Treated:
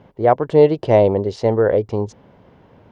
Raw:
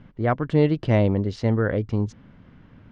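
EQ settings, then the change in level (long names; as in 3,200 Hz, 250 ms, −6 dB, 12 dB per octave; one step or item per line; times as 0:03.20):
high-pass filter 46 Hz
flat-topped bell 600 Hz +12 dB
high-shelf EQ 3,800 Hz +9 dB
−1.5 dB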